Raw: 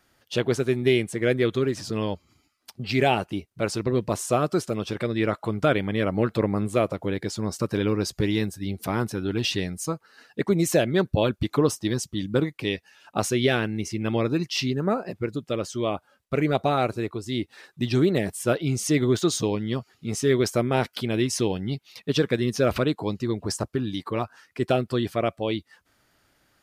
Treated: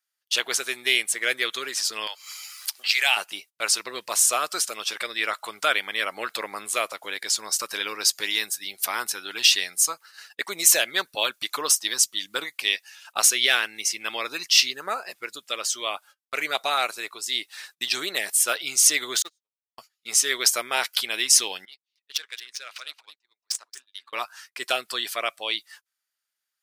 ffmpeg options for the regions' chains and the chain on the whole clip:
-filter_complex "[0:a]asettb=1/sr,asplit=3[s0][s1][s2];[s0]atrim=end=2.074[s3];[s1]atrim=start=2.07:end=3.17,asetpts=PTS-STARTPTS,afade=t=in:d=0.004:c=qsin,afade=t=out:st=1.096:d=0.004:c=qsin,highpass=950,acompressor=mode=upward:threshold=0.0251:ratio=2.5:attack=3.2:release=140:knee=2.83:detection=peak[s4];[s2]atrim=start=3.166[s5];[s3][s4]acrossfade=d=0.004:c1=hsin:c2=qsin[s6];[s6][s5]acrossfade=d=0.004:c1=qsin:c2=hsin,asettb=1/sr,asplit=3[s7][s8][s9];[s7]atrim=end=19.224[s10];[s8]atrim=start=19.22:end=19.78,asetpts=PTS-STARTPTS,afade=t=in:d=0.004:c=qsin,afade=t=out:st=0.556:d=0.004:c=qsin,aeval=exprs='val(0)+0.5*0.0447*sgn(val(0))':c=same,agate=range=0.00141:threshold=0.158:ratio=16:release=100:detection=peak,highshelf=f=7000:g=-11[s11];[s9]atrim=start=19.776[s12];[s10][s11]acrossfade=d=0.004:c1=hsin:c2=qsin[s13];[s13][s12]acrossfade=d=0.004:c1=qsin:c2=hsin,asettb=1/sr,asplit=3[s14][s15][s16];[s14]atrim=end=21.654[s17];[s15]atrim=start=21.65:end=24.13,asetpts=PTS-STARTPTS,afade=t=in:d=0.004:c=qsin,afade=t=out:st=2.476:d=0.004:c=qsin,aderivative,adynamicsmooth=sensitivity=3.5:basefreq=2200,aecho=1:1:224:0.211,atrim=end_sample=109368[s18];[s16]atrim=start=24.126[s19];[s17][s18]acrossfade=d=0.004:c1=hsin:c2=qsin[s20];[s20][s19]acrossfade=d=0.004:c1=qsin:c2=hsin,highpass=1200,agate=range=0.0447:threshold=0.00178:ratio=16:detection=peak,highshelf=f=4000:g=11.5,volume=1.78"

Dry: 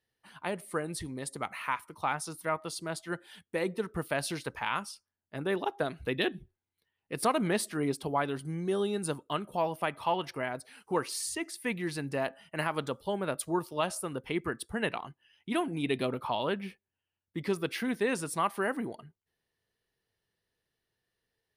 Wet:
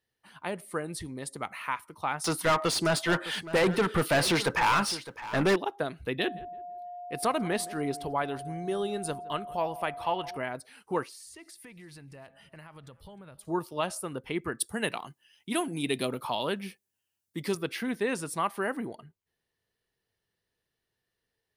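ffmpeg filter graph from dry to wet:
-filter_complex "[0:a]asettb=1/sr,asplit=3[s0][s1][s2];[s0]atrim=end=2.244[s3];[s1]atrim=start=2.24:end=5.56,asetpts=PTS-STARTPTS,afade=t=in:d=0.004:c=qsin,afade=t=out:st=3.316:d=0.004:c=qsin,bass=f=250:g=6,treble=f=4000:g=-1,asplit=2[s4][s5];[s5]highpass=f=720:p=1,volume=22.4,asoftclip=type=tanh:threshold=0.158[s6];[s4][s6]amix=inputs=2:normalize=0,lowpass=f=4200:p=1,volume=0.501,aecho=1:1:610:0.178,atrim=end_sample=146412[s7];[s2]atrim=start=5.556[s8];[s3][s7]acrossfade=d=0.004:c1=hsin:c2=qsin[s9];[s9][s8]acrossfade=d=0.004:c1=qsin:c2=hsin,asettb=1/sr,asplit=3[s10][s11][s12];[s10]atrim=end=6.194[s13];[s11]atrim=start=6.19:end=10.37,asetpts=PTS-STARTPTS,afade=t=in:d=0.004:c=qsin,afade=t=out:st=4.176:d=0.004:c=qsin,asubboost=boost=6.5:cutoff=72,aeval=exprs='val(0)+0.0126*sin(2*PI*710*n/s)':c=same,asplit=2[s14][s15];[s15]adelay=167,lowpass=f=1400:p=1,volume=0.119,asplit=2[s16][s17];[s17]adelay=167,lowpass=f=1400:p=1,volume=0.37,asplit=2[s18][s19];[s19]adelay=167,lowpass=f=1400:p=1,volume=0.37[s20];[s14][s16][s18][s20]amix=inputs=4:normalize=0,atrim=end_sample=184338[s21];[s12]atrim=start=10.366[s22];[s13][s21]acrossfade=d=0.004:c1=hsin:c2=qsin[s23];[s23][s22]acrossfade=d=0.004:c1=qsin:c2=hsin,asettb=1/sr,asplit=3[s24][s25][s26];[s24]atrim=end=11.034[s27];[s25]atrim=start=11.03:end=13.45,asetpts=PTS-STARTPTS,afade=t=in:d=0.004:c=qsin,afade=t=out:st=2.416:d=0.004:c=qsin,asubboost=boost=10:cutoff=120,acompressor=threshold=0.00501:ratio=6:attack=3.2:release=140:knee=1:detection=peak,aecho=1:1:305|610|915:0.0794|0.0326|0.0134,atrim=end_sample=106722[s28];[s26]atrim=start=13.446[s29];[s27][s28]acrossfade=d=0.004:c1=hsin:c2=qsin[s30];[s30][s29]acrossfade=d=0.004:c1=qsin:c2=hsin,asettb=1/sr,asplit=3[s31][s32][s33];[s31]atrim=end=14.604[s34];[s32]atrim=start=14.6:end=17.55,asetpts=PTS-STARTPTS,afade=t=in:d=0.004:c=qsin,afade=t=out:st=2.946:d=0.004:c=qsin,highpass=110,bass=f=250:g=1,treble=f=4000:g=12[s35];[s33]atrim=start=17.546[s36];[s34][s35]acrossfade=d=0.004:c1=hsin:c2=qsin[s37];[s37][s36]acrossfade=d=0.004:c1=qsin:c2=hsin"

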